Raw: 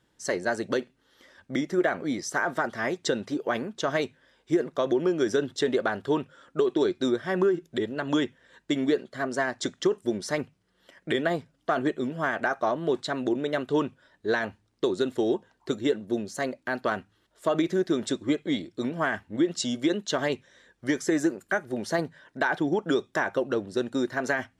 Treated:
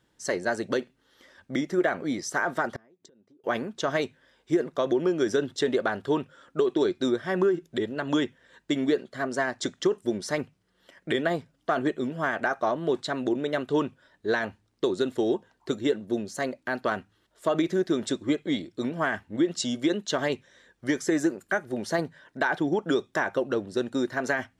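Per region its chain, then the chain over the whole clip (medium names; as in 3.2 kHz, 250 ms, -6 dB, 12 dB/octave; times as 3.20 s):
2.74–3.44 s: peaking EQ 280 Hz +12.5 dB 3 oct + compression 16:1, threshold -23 dBFS + inverted gate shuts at -24 dBFS, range -32 dB
whole clip: none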